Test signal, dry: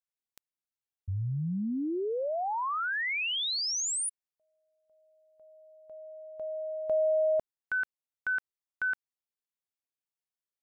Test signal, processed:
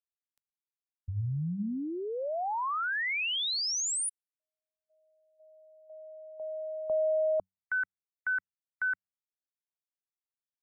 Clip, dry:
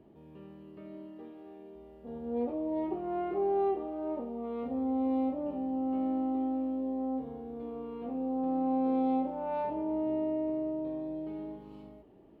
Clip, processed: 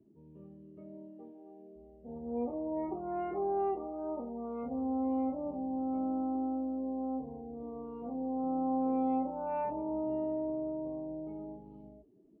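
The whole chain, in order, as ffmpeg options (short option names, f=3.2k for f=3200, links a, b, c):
-filter_complex "[0:a]bandreject=f=93.75:t=h:w=4,bandreject=f=187.5:t=h:w=4,afftdn=nr=22:nf=-50,acrossover=split=330|420[a][b][c];[b]acrusher=bits=3:mix=0:aa=0.5[d];[a][d][c]amix=inputs=3:normalize=0"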